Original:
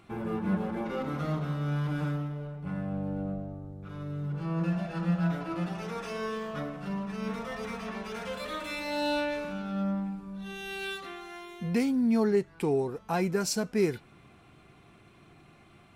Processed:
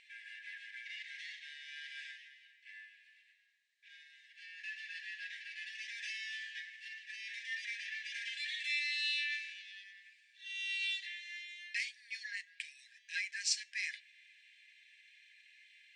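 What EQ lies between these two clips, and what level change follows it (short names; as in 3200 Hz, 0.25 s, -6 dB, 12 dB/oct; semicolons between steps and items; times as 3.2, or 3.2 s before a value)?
brick-wall FIR band-pass 1600–9700 Hz; air absorption 85 m; +4.5 dB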